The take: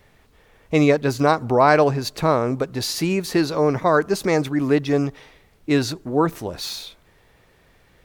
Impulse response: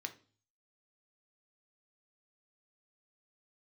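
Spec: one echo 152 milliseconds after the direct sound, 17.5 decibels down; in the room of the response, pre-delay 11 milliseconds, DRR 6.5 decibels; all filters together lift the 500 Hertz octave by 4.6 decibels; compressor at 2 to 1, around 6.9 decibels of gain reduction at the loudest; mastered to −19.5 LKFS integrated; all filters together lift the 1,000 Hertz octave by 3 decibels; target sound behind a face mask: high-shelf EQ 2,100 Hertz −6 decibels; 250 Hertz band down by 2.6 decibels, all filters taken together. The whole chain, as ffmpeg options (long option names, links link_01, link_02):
-filter_complex "[0:a]equalizer=frequency=250:width_type=o:gain=-6.5,equalizer=frequency=500:width_type=o:gain=7,equalizer=frequency=1000:width_type=o:gain=3,acompressor=threshold=-19dB:ratio=2,aecho=1:1:152:0.133,asplit=2[link_01][link_02];[1:a]atrim=start_sample=2205,adelay=11[link_03];[link_02][link_03]afir=irnorm=-1:irlink=0,volume=-5dB[link_04];[link_01][link_04]amix=inputs=2:normalize=0,highshelf=frequency=2100:gain=-6,volume=2.5dB"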